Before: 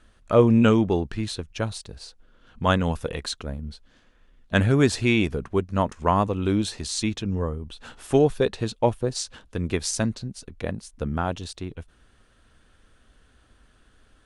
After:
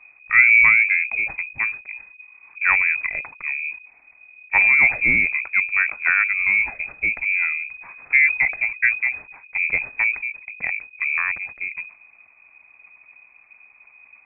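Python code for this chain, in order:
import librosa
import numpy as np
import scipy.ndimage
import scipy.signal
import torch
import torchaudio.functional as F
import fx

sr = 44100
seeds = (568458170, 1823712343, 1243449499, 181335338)

y = fx.low_shelf(x, sr, hz=360.0, db=6.5)
y = fx.freq_invert(y, sr, carrier_hz=2500)
y = fx.sustainer(y, sr, db_per_s=150.0)
y = F.gain(torch.from_numpy(y), -1.0).numpy()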